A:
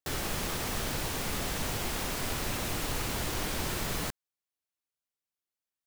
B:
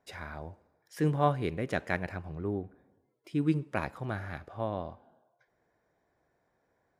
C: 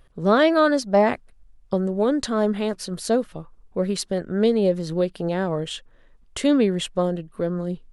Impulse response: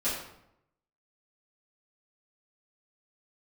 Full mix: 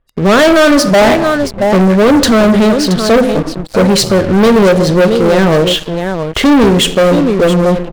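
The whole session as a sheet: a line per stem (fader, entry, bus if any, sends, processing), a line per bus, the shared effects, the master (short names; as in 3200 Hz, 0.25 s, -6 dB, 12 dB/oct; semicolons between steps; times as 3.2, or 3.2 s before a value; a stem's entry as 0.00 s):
off
+1.5 dB, 0.00 s, bus A, send -19 dB, no echo send, per-bin expansion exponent 3; high shelf 2300 Hz -3.5 dB; compressor, threshold -38 dBFS, peak gain reduction 14.5 dB
-1.5 dB, 0.00 s, no bus, send -18 dB, echo send -12 dB, low-pass opened by the level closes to 2200 Hz, open at -17.5 dBFS
bus A: 0.0 dB, compressor, threshold -40 dBFS, peak gain reduction 7 dB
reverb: on, RT60 0.80 s, pre-delay 3 ms
echo: echo 0.675 s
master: AGC gain up to 3.5 dB; sample leveller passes 5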